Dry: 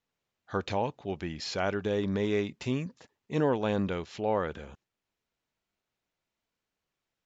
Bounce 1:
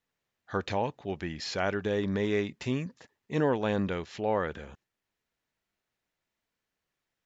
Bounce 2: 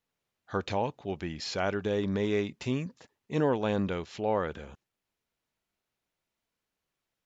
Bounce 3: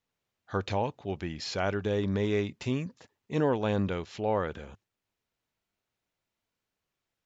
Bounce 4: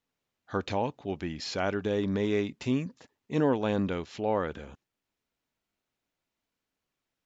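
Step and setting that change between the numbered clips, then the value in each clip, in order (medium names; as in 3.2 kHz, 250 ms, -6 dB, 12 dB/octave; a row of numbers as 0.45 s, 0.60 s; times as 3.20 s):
peaking EQ, frequency: 1.8 kHz, 11 kHz, 100 Hz, 270 Hz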